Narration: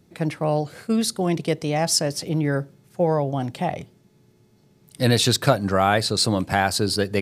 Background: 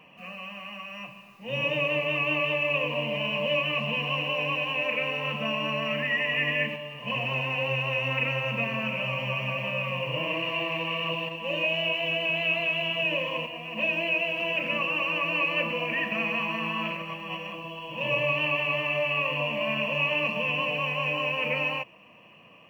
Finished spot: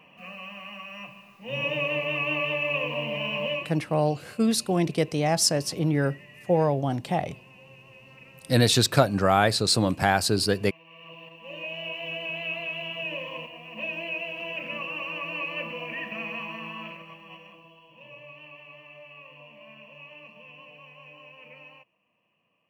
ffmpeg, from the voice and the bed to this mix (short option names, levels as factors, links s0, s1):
-filter_complex "[0:a]adelay=3500,volume=0.841[s0];[1:a]volume=6.68,afade=t=out:st=3.46:d=0.27:silence=0.0749894,afade=t=in:st=10.84:d=1.28:silence=0.133352,afade=t=out:st=16.35:d=1.75:silence=0.188365[s1];[s0][s1]amix=inputs=2:normalize=0"